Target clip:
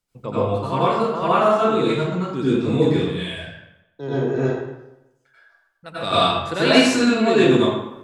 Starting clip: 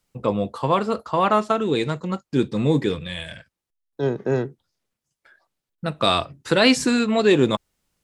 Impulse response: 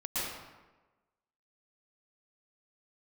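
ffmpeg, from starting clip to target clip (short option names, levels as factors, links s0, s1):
-filter_complex "[0:a]asettb=1/sr,asplit=3[s0][s1][s2];[s0]atrim=end=4.384[s3];[s1]atrim=start=4.38:end=5.97,asetpts=PTS-STARTPTS,afade=t=in:d=0.004:c=qsin,afade=t=out:st=1.586:d=0.004:c=qsin,equalizer=f=200:t=o:w=1.8:g=-12.5[s4];[s2]atrim=start=5.966[s5];[s3][s4]acrossfade=d=0.004:c1=hsin:c2=qsin[s6];[s6][s5]acrossfade=d=0.004:c1=qsin:c2=hsin[s7];[1:a]atrim=start_sample=2205,asetrate=57330,aresample=44100[s8];[s7][s8]afir=irnorm=-1:irlink=0,volume=0.841"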